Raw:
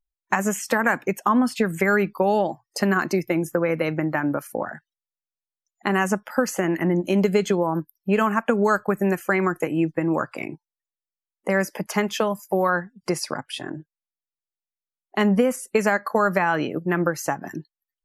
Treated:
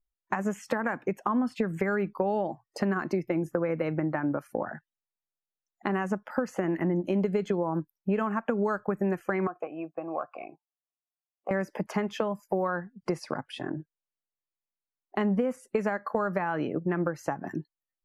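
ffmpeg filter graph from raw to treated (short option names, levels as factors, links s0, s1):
-filter_complex "[0:a]asettb=1/sr,asplit=3[s0][s1][s2];[s0]atrim=end=9.474[s3];[s1]atrim=start=9.47:end=11.51,asetpts=PTS-STARTPTS,afade=t=in:d=0.004:c=qsin,afade=t=out:st=2.036:d=0.004:c=qsin,acontrast=41,asplit=3[s4][s5][s6];[s4]bandpass=f=730:t=q:w=8,volume=1[s7];[s5]bandpass=f=1090:t=q:w=8,volume=0.501[s8];[s6]bandpass=f=2440:t=q:w=8,volume=0.355[s9];[s7][s8][s9]amix=inputs=3:normalize=0[s10];[s2]atrim=start=11.506[s11];[s3][s10]acrossfade=d=0.004:c1=hsin:c2=qsin[s12];[s12][s11]acrossfade=d=0.004:c1=qsin:c2=hsin,lowpass=f=3900:p=1,acompressor=threshold=0.0501:ratio=2.5,highshelf=f=2100:g=-9.5"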